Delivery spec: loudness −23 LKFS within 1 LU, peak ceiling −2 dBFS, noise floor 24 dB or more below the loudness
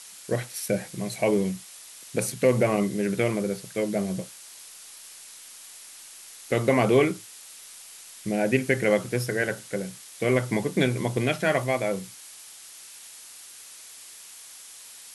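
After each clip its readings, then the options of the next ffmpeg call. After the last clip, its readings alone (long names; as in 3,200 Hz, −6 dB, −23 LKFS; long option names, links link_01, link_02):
background noise floor −46 dBFS; target noise floor −50 dBFS; integrated loudness −26.0 LKFS; sample peak −7.5 dBFS; target loudness −23.0 LKFS
→ -af "afftdn=noise_reduction=6:noise_floor=-46"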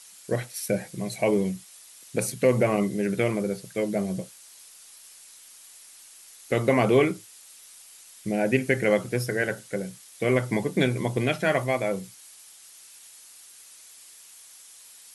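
background noise floor −50 dBFS; integrated loudness −26.0 LKFS; sample peak −7.5 dBFS; target loudness −23.0 LKFS
→ -af "volume=3dB"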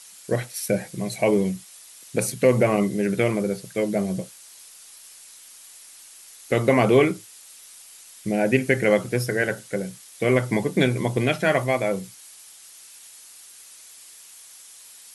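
integrated loudness −23.0 LKFS; sample peak −4.5 dBFS; background noise floor −47 dBFS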